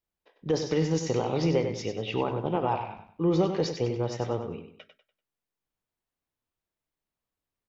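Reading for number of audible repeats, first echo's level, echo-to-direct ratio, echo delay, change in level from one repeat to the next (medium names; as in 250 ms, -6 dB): 3, -8.0 dB, -7.5 dB, 97 ms, -10.0 dB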